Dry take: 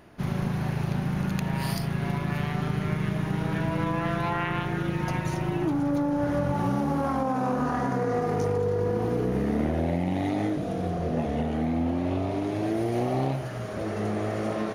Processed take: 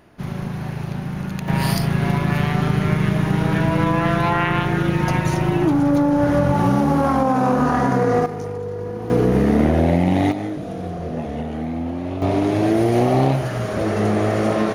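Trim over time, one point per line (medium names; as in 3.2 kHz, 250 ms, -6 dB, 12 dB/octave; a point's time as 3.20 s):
+1 dB
from 1.48 s +9 dB
from 8.26 s -2 dB
from 9.10 s +10 dB
from 10.32 s +1 dB
from 12.22 s +10 dB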